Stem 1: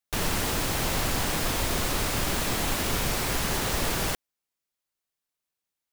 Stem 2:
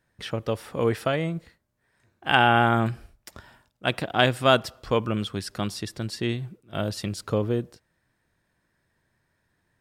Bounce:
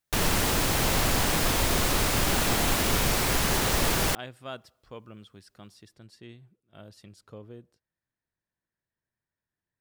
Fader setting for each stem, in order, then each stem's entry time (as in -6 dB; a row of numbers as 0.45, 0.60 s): +2.5, -20.0 dB; 0.00, 0.00 s